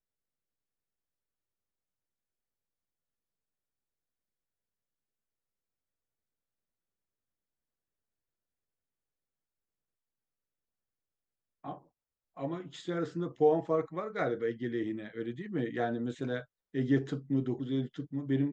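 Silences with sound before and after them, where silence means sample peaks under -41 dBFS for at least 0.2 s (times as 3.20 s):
11.75–12.37 s
16.42–16.74 s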